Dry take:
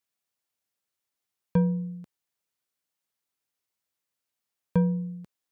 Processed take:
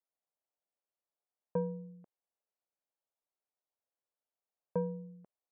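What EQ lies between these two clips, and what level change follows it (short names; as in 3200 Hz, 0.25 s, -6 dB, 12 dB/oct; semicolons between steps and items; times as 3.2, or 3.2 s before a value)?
band-pass 640 Hz, Q 1.7; air absorption 490 m; +1.0 dB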